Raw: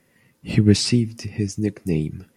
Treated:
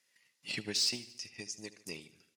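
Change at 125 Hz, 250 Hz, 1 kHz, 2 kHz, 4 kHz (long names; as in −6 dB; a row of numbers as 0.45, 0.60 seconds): −32.5 dB, −26.5 dB, can't be measured, −8.0 dB, −6.0 dB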